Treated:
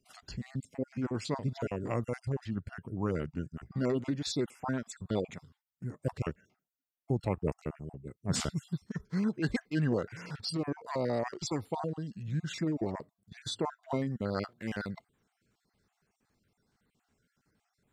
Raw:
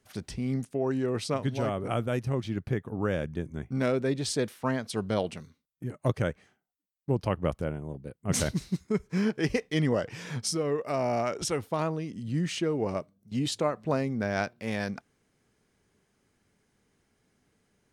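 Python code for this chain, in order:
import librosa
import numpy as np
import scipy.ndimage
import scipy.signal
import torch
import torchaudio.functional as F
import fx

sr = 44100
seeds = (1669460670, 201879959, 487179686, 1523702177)

y = fx.spec_dropout(x, sr, seeds[0], share_pct=33)
y = fx.formant_shift(y, sr, semitones=-3)
y = y * librosa.db_to_amplitude(-3.0)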